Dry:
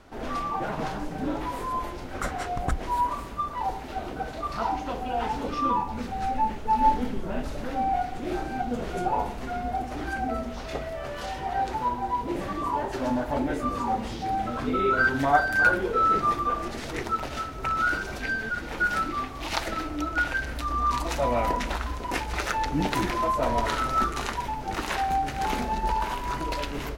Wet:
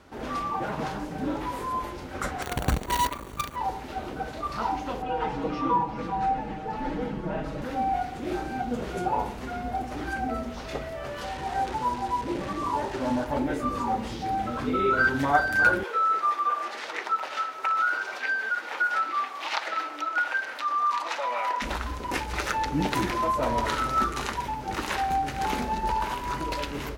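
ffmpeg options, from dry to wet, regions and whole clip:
-filter_complex "[0:a]asettb=1/sr,asplit=3[a][b][c];[a]atrim=end=2.424[d];[b]atrim=start=2.42:end=3.56,asetpts=PTS-STARTPTS,afade=t=in:d=0.004:c=qsin,afade=t=out:st=1.136:d=0.004:c=qsin,tiltshelf=f=800:g=4.5,acrusher=bits=5:dc=4:mix=0:aa=0.000001,asuperstop=centerf=5100:order=20:qfactor=7.8[e];[c]atrim=start=3.556[f];[d][e]acrossfade=d=0.004:c1=hsin:c2=qsin[g];[g][f]acrossfade=d=0.004:c1=qsin:c2=hsin,asettb=1/sr,asplit=3[h][i][j];[h]atrim=end=5.024[k];[i]atrim=start=5.02:end=7.62,asetpts=PTS-STARTPTS,afade=t=in:d=0.004:c=qsin,afade=t=out:st=2.596:d=0.004:c=qsin,lowpass=f=2k:p=1,aecho=1:1:6.3:0.89,atrim=end_sample=114660,aecho=1:1:391:0.224,atrim=end_sample=114660[l];[j]atrim=start=7.616[m];[k][l]acrossfade=d=0.004:c1=hsin:c2=qsin[n];[n][m]acrossfade=d=0.004:c1=qsin:c2=hsin,asettb=1/sr,asplit=3[o][p][q];[o]atrim=end=11.244[r];[p]atrim=start=11.24:end=13.27,asetpts=PTS-STARTPTS,afade=t=in:d=0.004:c=qsin,afade=t=out:st=2.026:d=0.004:c=qsin,acrusher=bits=7:dc=4:mix=0:aa=0.000001,adynamicsmooth=sensitivity=4.5:basefreq=4.2k[s];[q]atrim=start=13.266[t];[r][s]acrossfade=d=0.004:c1=hsin:c2=qsin[u];[u][t]acrossfade=d=0.004:c1=qsin:c2=hsin,asettb=1/sr,asplit=3[v][w][x];[v]atrim=end=15.834[y];[w]atrim=start=15.83:end=21.62,asetpts=PTS-STARTPTS,afade=t=in:d=0.004:c=qsin,afade=t=out:st=5.786:d=0.004:c=qsin,equalizer=f=990:w=0.37:g=5,acrossover=split=1200|6000[z][aa][ab];[z]acompressor=threshold=-26dB:ratio=4[ac];[aa]acompressor=threshold=-28dB:ratio=4[ad];[ab]acompressor=threshold=-60dB:ratio=4[ae];[ac][ad][ae]amix=inputs=3:normalize=0,highpass=700[af];[x]atrim=start=21.616[ag];[y][af]acrossfade=d=0.004:c1=hsin:c2=qsin[ah];[ah][ag]acrossfade=d=0.004:c1=qsin:c2=hsin,highpass=50,bandreject=f=690:w=12"

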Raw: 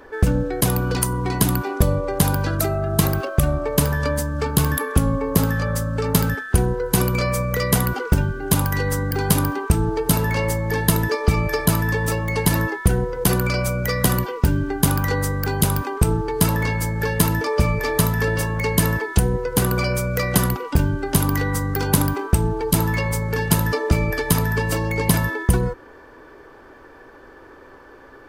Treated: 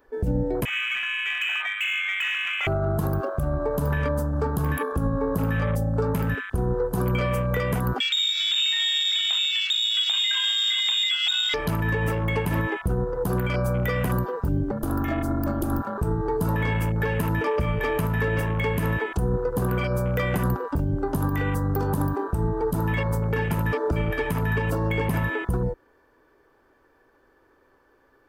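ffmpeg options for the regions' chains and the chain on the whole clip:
-filter_complex "[0:a]asettb=1/sr,asplit=3[a][b][c];[a]atrim=end=0.654[d];[b]atrim=start=0.65:end=2.67,asetpts=PTS-STARTPTS,afade=t=in:d=0.004:c=qsin,afade=t=out:st=2.016:d=0.004:c=qsin,lowshelf=f=200:g=-6,lowpass=f=2.3k:t=q:w=0.5098,lowpass=f=2.3k:t=q:w=0.6013,lowpass=f=2.3k:t=q:w=0.9,lowpass=f=2.3k:t=q:w=2.563,afreqshift=-2700,volume=22dB,asoftclip=hard,volume=-22dB[e];[c]atrim=start=2.666[f];[d][e]acrossfade=d=0.004:c1=hsin:c2=qsin[g];[g][f]acrossfade=d=0.004:c1=qsin:c2=hsin,asettb=1/sr,asplit=3[h][i][j];[h]atrim=end=8.004[k];[i]atrim=start=8:end=11.54,asetpts=PTS-STARTPTS,afade=t=in:d=0.004:c=qsin,afade=t=out:st=3.536:d=0.004:c=qsin,aeval=exprs='0.596*sin(PI/2*1.41*val(0)/0.596)':c=same,lowpass=f=3.2k:t=q:w=0.5098,lowpass=f=3.2k:t=q:w=0.6013,lowpass=f=3.2k:t=q:w=0.9,lowpass=f=3.2k:t=q:w=2.563,afreqshift=-3800,lowshelf=f=450:g=-7.5[l];[j]atrim=start=11.536[m];[k][l]acrossfade=d=0.004:c1=hsin:c2=qsin[n];[n][m]acrossfade=d=0.004:c1=qsin:c2=hsin,asettb=1/sr,asplit=3[o][p][q];[o]atrim=end=14.714[r];[p]atrim=start=14.71:end=15.98,asetpts=PTS-STARTPTS,afade=t=in:d=0.004:c=qsin,afade=t=out:st=1.266:d=0.004:c=qsin,aecho=1:1:1.9:0.62,atrim=end_sample=56007,aeval=exprs='val(0)*sin(2*PI*180*n/s)':c=same[s];[q]atrim=start=15.976[t];[r][s]acrossfade=d=0.004:c1=hsin:c2=qsin[u];[u][t]acrossfade=d=0.004:c1=qsin:c2=hsin,afwtdn=0.0447,highshelf=f=12k:g=12,alimiter=limit=-15.5dB:level=0:latency=1:release=130"

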